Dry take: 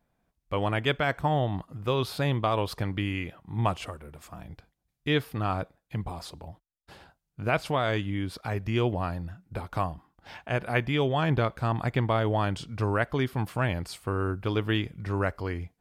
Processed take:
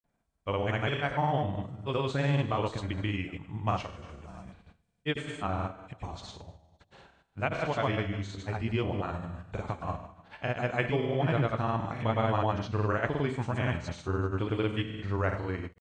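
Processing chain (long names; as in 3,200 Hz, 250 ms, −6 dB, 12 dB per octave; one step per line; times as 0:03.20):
hearing-aid frequency compression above 3,200 Hz 1.5 to 1
four-comb reverb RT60 0.79 s, combs from 28 ms, DRR 6 dB
granular cloud, pitch spread up and down by 0 semitones
level −2 dB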